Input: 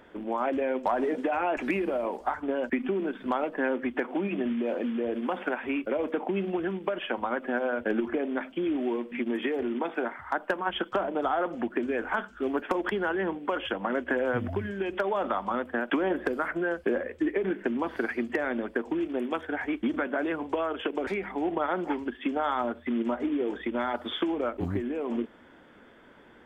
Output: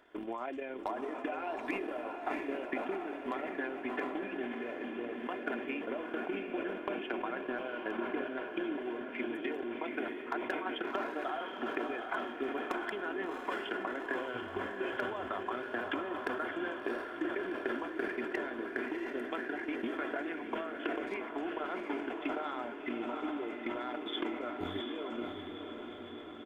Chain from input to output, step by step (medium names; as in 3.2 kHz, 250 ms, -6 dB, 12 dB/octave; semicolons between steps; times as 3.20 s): transient shaper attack +9 dB, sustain -11 dB; bass shelf 330 Hz -11.5 dB; comb 2.9 ms, depth 41%; dynamic bell 910 Hz, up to -4 dB, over -34 dBFS, Q 0.73; compression, threshold -26 dBFS, peak gain reduction 8.5 dB; echo that smears into a reverb 716 ms, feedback 65%, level -5 dB; decay stretcher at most 51 dB/s; trim -7.5 dB